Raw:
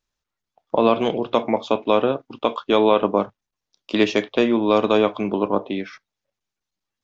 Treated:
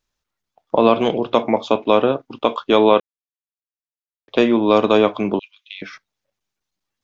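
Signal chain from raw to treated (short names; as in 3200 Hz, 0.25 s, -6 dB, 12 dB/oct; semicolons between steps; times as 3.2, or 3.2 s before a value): 3–4.28 mute; 5.39–5.82 steep high-pass 2200 Hz 48 dB/oct; gain +3 dB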